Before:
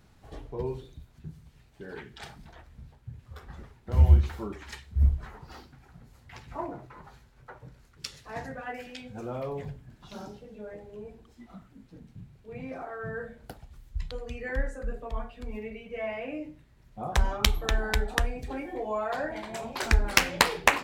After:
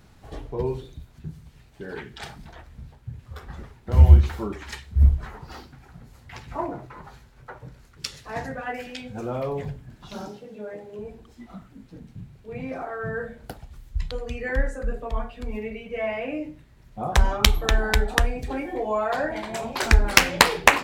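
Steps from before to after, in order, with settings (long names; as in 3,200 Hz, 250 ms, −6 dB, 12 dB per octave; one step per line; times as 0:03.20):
0:10.27–0:10.99: high-pass filter 160 Hz 12 dB per octave
level +6 dB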